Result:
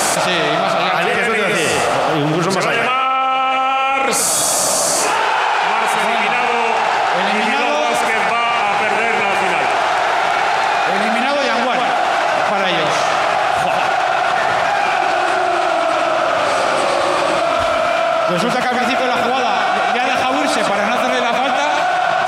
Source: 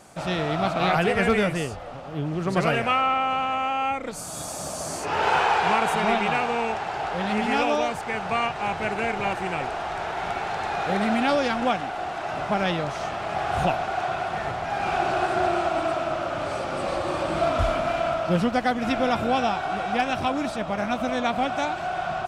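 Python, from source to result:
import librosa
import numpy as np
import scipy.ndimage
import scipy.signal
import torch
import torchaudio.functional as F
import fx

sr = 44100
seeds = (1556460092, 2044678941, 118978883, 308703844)

y = fx.highpass(x, sr, hz=760.0, slope=6)
y = fx.echo_feedback(y, sr, ms=114, feedback_pct=34, wet_db=-7.5)
y = fx.env_flatten(y, sr, amount_pct=100)
y = y * librosa.db_to_amplitude(4.5)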